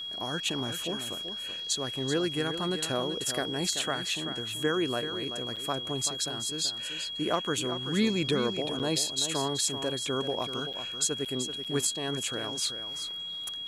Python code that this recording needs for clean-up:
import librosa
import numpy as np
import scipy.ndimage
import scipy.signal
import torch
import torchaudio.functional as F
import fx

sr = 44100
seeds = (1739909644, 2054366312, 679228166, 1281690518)

y = fx.fix_declip(x, sr, threshold_db=-14.5)
y = fx.notch(y, sr, hz=3300.0, q=30.0)
y = fx.fix_interpolate(y, sr, at_s=(5.56, 8.79, 10.73, 11.25, 11.64), length_ms=6.7)
y = fx.fix_echo_inverse(y, sr, delay_ms=383, level_db=-9.5)